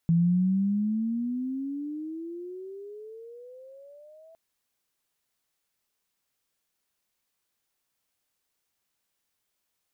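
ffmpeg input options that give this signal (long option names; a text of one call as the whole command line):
ffmpeg -f lavfi -i "aevalsrc='pow(10,(-18-31.5*t/4.26)/20)*sin(2*PI*165*4.26/(24*log(2)/12)*(exp(24*log(2)/12*t/4.26)-1))':duration=4.26:sample_rate=44100" out.wav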